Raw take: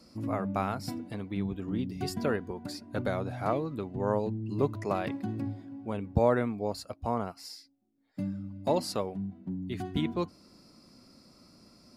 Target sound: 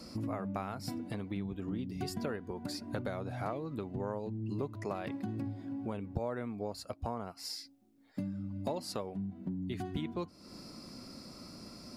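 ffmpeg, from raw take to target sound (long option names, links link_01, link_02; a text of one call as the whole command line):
ffmpeg -i in.wav -af "acompressor=threshold=-45dB:ratio=4,volume=8dB" out.wav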